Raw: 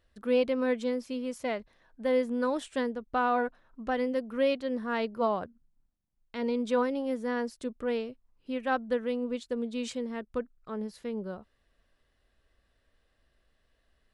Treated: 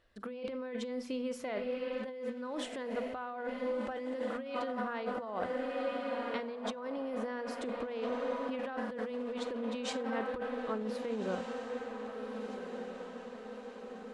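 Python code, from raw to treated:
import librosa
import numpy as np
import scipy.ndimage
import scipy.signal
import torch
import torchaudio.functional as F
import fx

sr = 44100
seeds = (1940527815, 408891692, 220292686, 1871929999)

p1 = fx.high_shelf(x, sr, hz=6200.0, db=-11.0)
p2 = p1 + fx.echo_diffused(p1, sr, ms=1518, feedback_pct=56, wet_db=-10, dry=0)
p3 = fx.rev_schroeder(p2, sr, rt60_s=0.35, comb_ms=33, drr_db=14.5)
p4 = fx.over_compress(p3, sr, threshold_db=-35.0, ratio=-1.0)
p5 = fx.low_shelf(p4, sr, hz=190.0, db=-8.0)
y = fx.hum_notches(p5, sr, base_hz=60, count=4)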